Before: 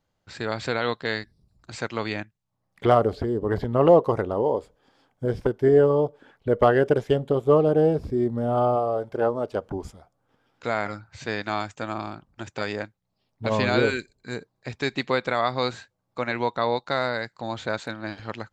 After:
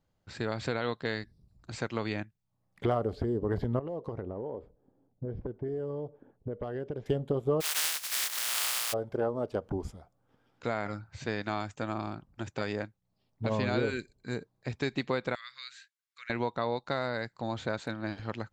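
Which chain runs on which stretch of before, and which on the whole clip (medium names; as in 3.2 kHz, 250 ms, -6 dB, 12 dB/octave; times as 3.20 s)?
3.79–7.06 s: level-controlled noise filter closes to 480 Hz, open at -12 dBFS + peaking EQ 1.3 kHz -4.5 dB 1.7 oct + compression 4:1, threshold -33 dBFS
7.60–8.92 s: spectral contrast reduction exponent 0.15 + high-pass 1.4 kHz + upward compressor, threshold -23 dBFS
15.35–16.30 s: inverse Chebyshev high-pass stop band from 810 Hz + compression 1.5:1, threshold -46 dBFS
whole clip: bass shelf 420 Hz +6 dB; compression 2.5:1, threshold -23 dBFS; trim -5 dB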